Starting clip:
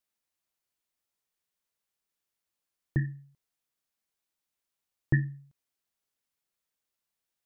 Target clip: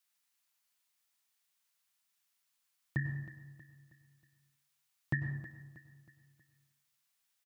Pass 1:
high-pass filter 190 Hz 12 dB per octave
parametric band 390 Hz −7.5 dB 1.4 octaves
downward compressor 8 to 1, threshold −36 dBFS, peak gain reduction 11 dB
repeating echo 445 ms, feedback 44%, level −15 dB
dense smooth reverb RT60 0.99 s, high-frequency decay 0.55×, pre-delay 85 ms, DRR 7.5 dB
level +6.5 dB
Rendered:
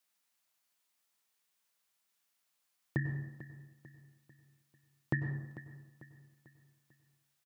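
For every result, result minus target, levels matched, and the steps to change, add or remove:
500 Hz band +8.0 dB; echo 127 ms late
change: parametric band 390 Hz −19 dB 1.4 octaves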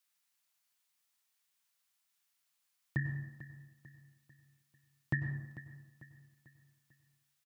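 echo 127 ms late
change: repeating echo 318 ms, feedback 44%, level −15 dB

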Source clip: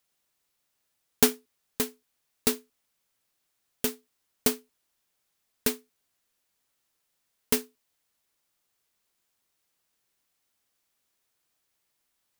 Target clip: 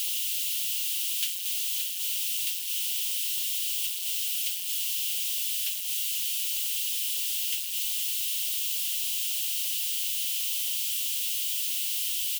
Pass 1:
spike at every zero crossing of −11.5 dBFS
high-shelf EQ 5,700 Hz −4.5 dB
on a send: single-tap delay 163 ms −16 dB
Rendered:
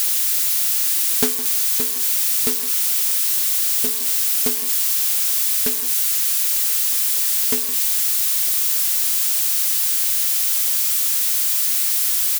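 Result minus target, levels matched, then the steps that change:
echo 88 ms early; 2,000 Hz band −3.5 dB
add after spike at every zero crossing: four-pole ladder high-pass 2,700 Hz, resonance 70%
change: single-tap delay 251 ms −16 dB

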